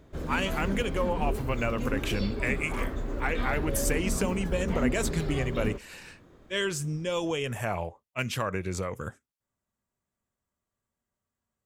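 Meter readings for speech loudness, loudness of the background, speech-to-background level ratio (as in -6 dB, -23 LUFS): -31.5 LUFS, -33.5 LUFS, 2.0 dB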